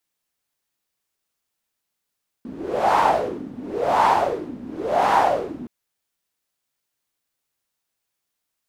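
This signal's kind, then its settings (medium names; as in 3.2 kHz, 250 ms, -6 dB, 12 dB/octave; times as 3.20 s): wind-like swept noise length 3.22 s, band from 240 Hz, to 910 Hz, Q 5.6, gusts 3, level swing 19 dB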